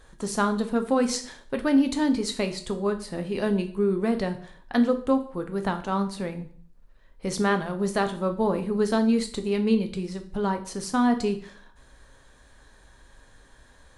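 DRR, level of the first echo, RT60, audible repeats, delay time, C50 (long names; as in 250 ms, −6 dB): 6.5 dB, no echo audible, 0.50 s, no echo audible, no echo audible, 13.0 dB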